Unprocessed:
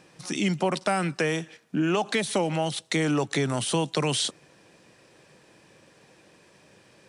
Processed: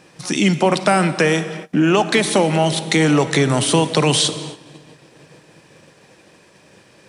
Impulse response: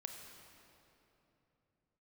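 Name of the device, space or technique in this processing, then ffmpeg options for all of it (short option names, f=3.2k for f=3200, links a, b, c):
keyed gated reverb: -filter_complex "[0:a]asplit=3[a][b][c];[1:a]atrim=start_sample=2205[d];[b][d]afir=irnorm=-1:irlink=0[e];[c]apad=whole_len=312531[f];[e][f]sidechaingate=range=-33dB:threshold=-54dB:ratio=16:detection=peak,volume=1.5dB[g];[a][g]amix=inputs=2:normalize=0,volume=5dB"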